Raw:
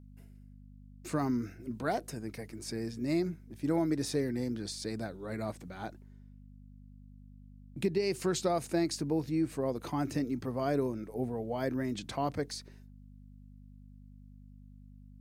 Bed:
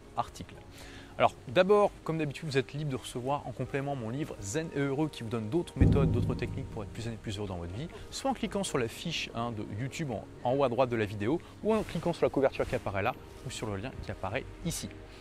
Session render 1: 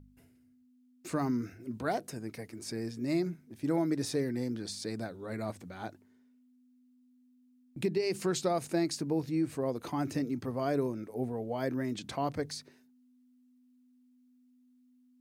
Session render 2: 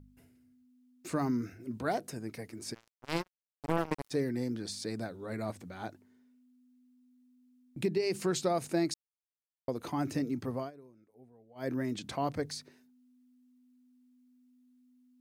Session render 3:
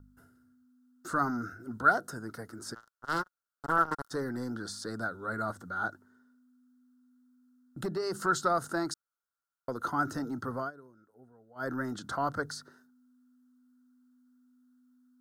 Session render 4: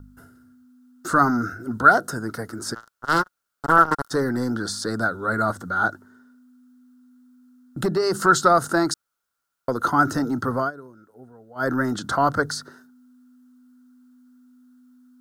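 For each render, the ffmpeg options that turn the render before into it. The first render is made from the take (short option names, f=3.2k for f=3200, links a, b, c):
-af "bandreject=f=50:t=h:w=4,bandreject=f=100:t=h:w=4,bandreject=f=150:t=h:w=4,bandreject=f=200:t=h:w=4"
-filter_complex "[0:a]asplit=3[a][b][c];[a]afade=t=out:st=2.73:d=0.02[d];[b]acrusher=bits=3:mix=0:aa=0.5,afade=t=in:st=2.73:d=0.02,afade=t=out:st=4.1:d=0.02[e];[c]afade=t=in:st=4.1:d=0.02[f];[d][e][f]amix=inputs=3:normalize=0,asplit=5[g][h][i][j][k];[g]atrim=end=8.94,asetpts=PTS-STARTPTS,afade=t=out:st=8.936:d=0.004:c=hsin[l];[h]atrim=start=8.94:end=9.68,asetpts=PTS-STARTPTS,volume=0[m];[i]atrim=start=9.68:end=10.71,asetpts=PTS-STARTPTS,afade=t=in:d=0.004:c=hsin,afade=t=out:st=0.88:d=0.15:silence=0.0668344[n];[j]atrim=start=10.71:end=11.55,asetpts=PTS-STARTPTS,volume=-23.5dB[o];[k]atrim=start=11.55,asetpts=PTS-STARTPTS,afade=t=in:d=0.15:silence=0.0668344[p];[l][m][n][o][p]concat=n=5:v=0:a=1"
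-filter_complex "[0:a]acrossover=split=660|2800[a][b][c];[a]asoftclip=type=tanh:threshold=-29.5dB[d];[b]lowpass=f=1.4k:t=q:w=12[e];[d][e][c]amix=inputs=3:normalize=0"
-af "volume=11.5dB,alimiter=limit=-2dB:level=0:latency=1"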